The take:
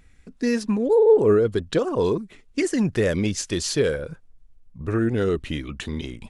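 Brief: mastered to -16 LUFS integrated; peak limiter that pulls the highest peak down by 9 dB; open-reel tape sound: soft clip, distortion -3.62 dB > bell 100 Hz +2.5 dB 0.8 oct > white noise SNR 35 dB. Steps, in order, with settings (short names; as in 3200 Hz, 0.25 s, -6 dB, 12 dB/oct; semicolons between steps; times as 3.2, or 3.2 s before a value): limiter -16.5 dBFS; soft clip -37.5 dBFS; bell 100 Hz +2.5 dB 0.8 oct; white noise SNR 35 dB; gain +23.5 dB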